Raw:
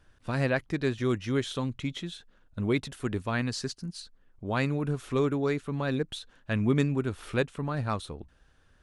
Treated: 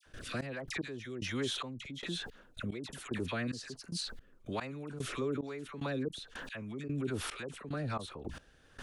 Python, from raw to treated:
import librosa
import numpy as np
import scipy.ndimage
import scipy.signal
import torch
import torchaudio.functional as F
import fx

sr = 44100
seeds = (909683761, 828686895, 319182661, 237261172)

y = fx.low_shelf(x, sr, hz=140.0, db=-11.0)
y = fx.dispersion(y, sr, late='lows', ms=62.0, hz=1400.0)
y = fx.step_gate(y, sr, bpm=111, pattern='.xx..x...xxx..', floor_db=-24.0, edge_ms=4.5)
y = fx.rotary(y, sr, hz=1.2)
y = fx.env_flatten(y, sr, amount_pct=70)
y = y * 10.0 ** (-7.0 / 20.0)